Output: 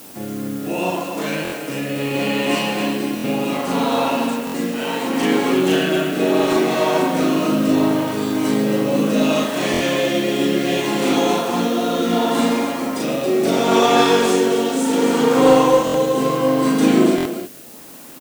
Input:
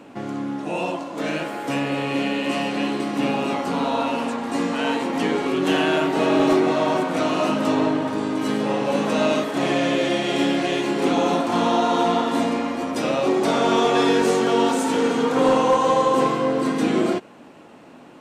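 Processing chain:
rotating-speaker cabinet horn 0.7 Hz
loudspeakers that aren't time-aligned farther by 13 metres −1 dB, 49 metres −11 dB, 94 metres −7 dB
in parallel at −9.5 dB: bit-depth reduction 6 bits, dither triangular
on the sum: high-shelf EQ 6,200 Hz +7.5 dB
buffer that repeats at 0:01.43/0:03.15/0:04.45/0:09.72/0:15.85/0:17.16, samples 1,024, times 3
level −1 dB

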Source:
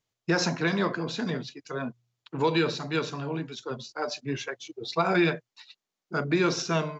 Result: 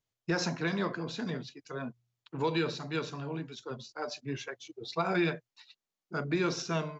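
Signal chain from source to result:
low-shelf EQ 76 Hz +7.5 dB
level −6 dB

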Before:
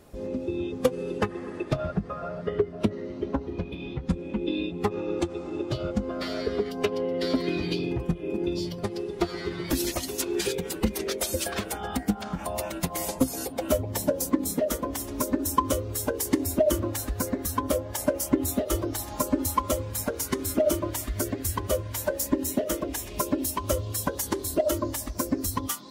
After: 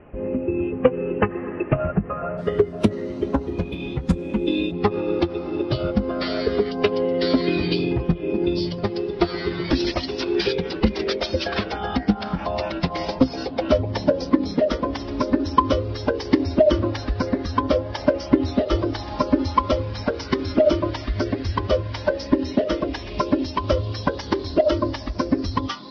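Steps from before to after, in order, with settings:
Butterworth low-pass 2,900 Hz 96 dB per octave, from 0:02.37 12,000 Hz, from 0:04.71 5,400 Hz
level +6.5 dB

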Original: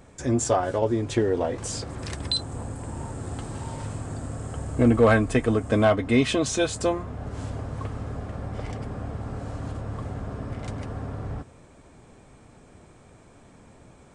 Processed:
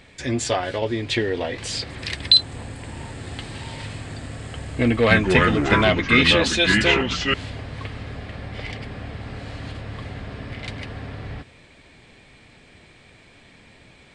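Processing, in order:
flat-topped bell 2,900 Hz +14 dB
0:04.87–0:07.34: delay with pitch and tempo change per echo 237 ms, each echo −4 semitones, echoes 2
level −1 dB

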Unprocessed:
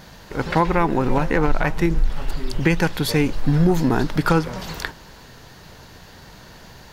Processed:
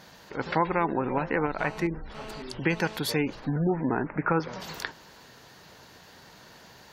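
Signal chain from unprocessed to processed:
high-pass filter 240 Hz 6 dB per octave
gate on every frequency bin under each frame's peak −30 dB strong
0:01.59–0:02.98: phone interference −38 dBFS
0:03.56–0:04.40: Butterworth low-pass 2,500 Hz 96 dB per octave
level −5.5 dB

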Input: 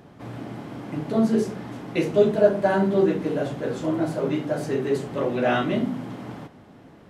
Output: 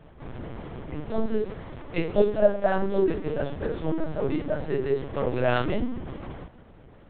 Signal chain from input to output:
0:00.94–0:03.42: low-shelf EQ 160 Hz −8 dB
linear-prediction vocoder at 8 kHz pitch kept
level −1.5 dB

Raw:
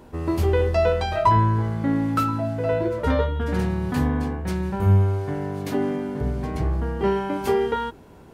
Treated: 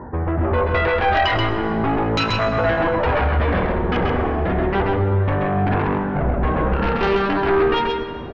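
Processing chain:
0:06.72–0:07.33: samples sorted by size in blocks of 32 samples
elliptic low-pass filter 1,800 Hz, stop band 40 dB
reverb reduction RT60 1 s
high-pass filter 47 Hz 24 dB per octave
in parallel at +2.5 dB: downward compressor, threshold −32 dBFS, peak gain reduction 17 dB
on the sum: brickwall limiter −16 dBFS, peak gain reduction 9.5 dB
automatic gain control gain up to 4.5 dB
sine wavefolder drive 8 dB, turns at −11.5 dBFS
flanger 0.34 Hz, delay 1 ms, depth 2 ms, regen +59%
single-tap delay 132 ms −3.5 dB
on a send at −9 dB: convolution reverb RT60 2.2 s, pre-delay 61 ms
on the sum: level −1.5 dB

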